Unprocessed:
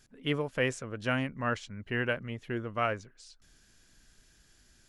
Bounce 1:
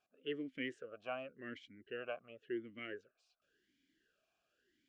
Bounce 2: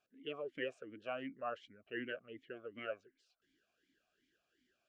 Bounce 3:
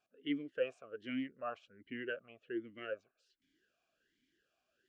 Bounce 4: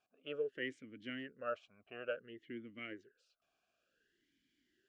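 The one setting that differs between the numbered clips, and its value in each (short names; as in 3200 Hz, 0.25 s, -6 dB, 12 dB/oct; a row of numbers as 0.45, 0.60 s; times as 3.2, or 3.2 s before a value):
vowel sweep, rate: 0.92, 2.7, 1.3, 0.56 Hz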